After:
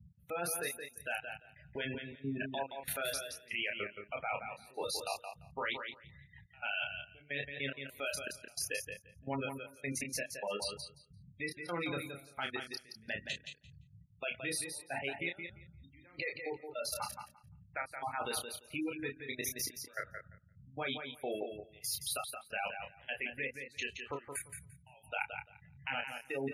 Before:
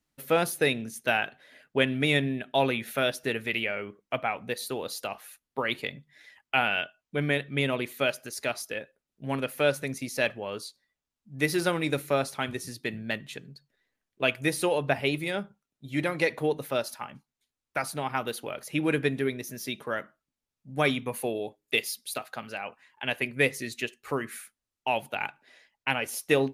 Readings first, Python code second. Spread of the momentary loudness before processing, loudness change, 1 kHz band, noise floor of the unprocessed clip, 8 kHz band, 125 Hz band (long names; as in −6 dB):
10 LU, −10.0 dB, −9.5 dB, below −85 dBFS, −2.5 dB, −14.0 dB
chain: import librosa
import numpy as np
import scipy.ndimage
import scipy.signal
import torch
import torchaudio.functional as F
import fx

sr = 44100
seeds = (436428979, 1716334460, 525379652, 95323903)

p1 = fx.notch(x, sr, hz=1100.0, q=13.0)
p2 = fx.dmg_noise_band(p1, sr, seeds[0], low_hz=59.0, high_hz=160.0, level_db=-47.0)
p3 = fx.low_shelf(p2, sr, hz=460.0, db=-11.5)
p4 = fx.level_steps(p3, sr, step_db=21)
p5 = fx.step_gate(p4, sr, bpm=154, pattern='x..xxxx...xx.', floor_db=-24.0, edge_ms=4.5)
p6 = np.clip(p5, -10.0 ** (-30.5 / 20.0), 10.0 ** (-30.5 / 20.0))
p7 = fx.doubler(p6, sr, ms=29.0, db=-4.5)
p8 = fx.spec_gate(p7, sr, threshold_db=-15, keep='strong')
p9 = p8 + fx.echo_feedback(p8, sr, ms=172, feedback_pct=15, wet_db=-7, dry=0)
y = p9 * librosa.db_to_amplitude(5.0)